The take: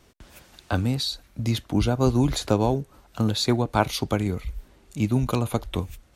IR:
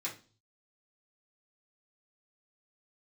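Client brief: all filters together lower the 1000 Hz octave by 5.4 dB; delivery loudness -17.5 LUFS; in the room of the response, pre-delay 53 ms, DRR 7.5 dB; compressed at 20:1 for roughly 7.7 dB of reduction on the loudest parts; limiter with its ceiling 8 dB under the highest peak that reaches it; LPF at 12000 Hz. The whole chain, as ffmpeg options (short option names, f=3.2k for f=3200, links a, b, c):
-filter_complex "[0:a]lowpass=12k,equalizer=f=1k:t=o:g=-7.5,acompressor=threshold=-23dB:ratio=20,alimiter=limit=-20.5dB:level=0:latency=1,asplit=2[a][b];[1:a]atrim=start_sample=2205,adelay=53[c];[b][c]afir=irnorm=-1:irlink=0,volume=-9.5dB[d];[a][d]amix=inputs=2:normalize=0,volume=14.5dB"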